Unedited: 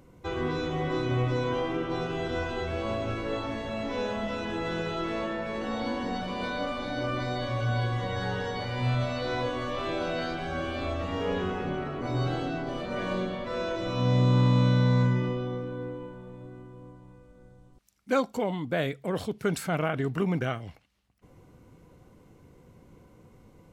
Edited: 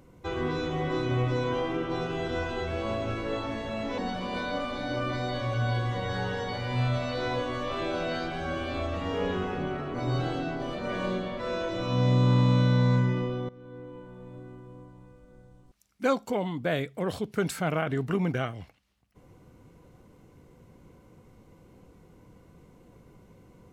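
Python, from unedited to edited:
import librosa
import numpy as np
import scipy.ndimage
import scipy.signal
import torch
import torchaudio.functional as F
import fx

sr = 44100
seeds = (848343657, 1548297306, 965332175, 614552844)

y = fx.edit(x, sr, fx.cut(start_s=3.98, length_s=2.07),
    fx.fade_in_from(start_s=15.56, length_s=0.84, floor_db=-18.5), tone=tone)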